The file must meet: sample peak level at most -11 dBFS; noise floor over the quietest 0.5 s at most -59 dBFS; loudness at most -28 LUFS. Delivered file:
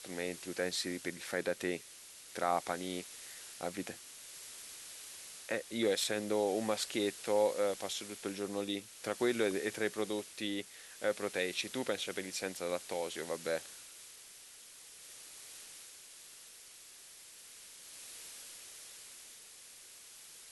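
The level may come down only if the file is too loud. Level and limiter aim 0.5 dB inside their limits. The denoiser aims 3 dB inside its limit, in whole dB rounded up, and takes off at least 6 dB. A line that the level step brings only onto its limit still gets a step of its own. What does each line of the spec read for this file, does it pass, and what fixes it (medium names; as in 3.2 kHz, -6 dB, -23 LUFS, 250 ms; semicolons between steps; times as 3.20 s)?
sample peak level -18.5 dBFS: pass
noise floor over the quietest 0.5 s -55 dBFS: fail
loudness -37.0 LUFS: pass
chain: noise reduction 7 dB, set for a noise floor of -55 dBFS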